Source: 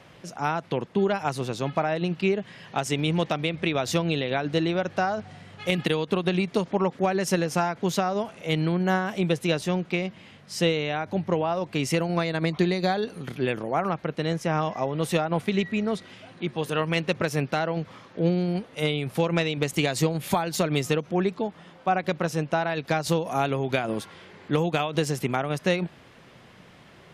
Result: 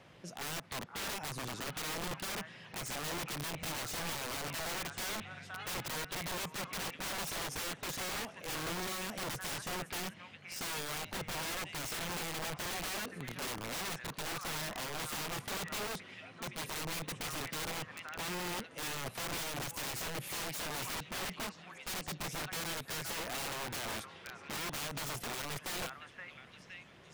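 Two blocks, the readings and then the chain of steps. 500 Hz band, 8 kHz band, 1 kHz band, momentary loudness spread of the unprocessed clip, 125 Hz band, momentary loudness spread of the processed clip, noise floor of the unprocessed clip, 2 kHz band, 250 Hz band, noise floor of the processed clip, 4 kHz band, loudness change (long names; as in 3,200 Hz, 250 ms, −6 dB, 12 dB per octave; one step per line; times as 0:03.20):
−19.0 dB, −1.0 dB, −13.0 dB, 6 LU, −18.0 dB, 6 LU, −51 dBFS, −8.5 dB, −19.5 dB, −56 dBFS, −6.0 dB, −12.0 dB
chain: dynamic equaliser 4,000 Hz, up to −6 dB, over −45 dBFS, Q 1.6
echo through a band-pass that steps 517 ms, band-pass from 1,500 Hz, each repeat 0.7 octaves, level −6.5 dB
wrap-around overflow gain 26.5 dB
level −7.5 dB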